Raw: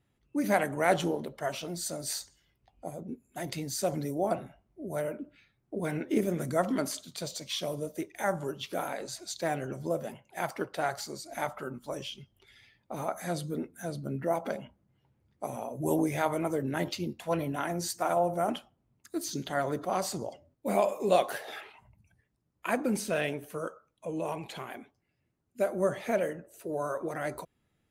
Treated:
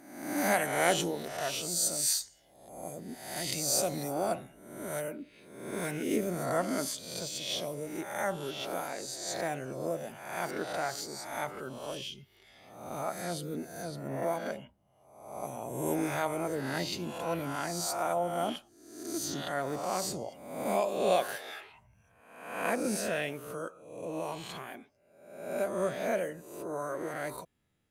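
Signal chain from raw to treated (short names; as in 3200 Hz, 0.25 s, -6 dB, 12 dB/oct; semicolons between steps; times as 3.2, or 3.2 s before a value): spectral swells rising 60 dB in 0.87 s; bell 11000 Hz +10 dB 2.8 oct, from 6.16 s +3 dB; gain -5 dB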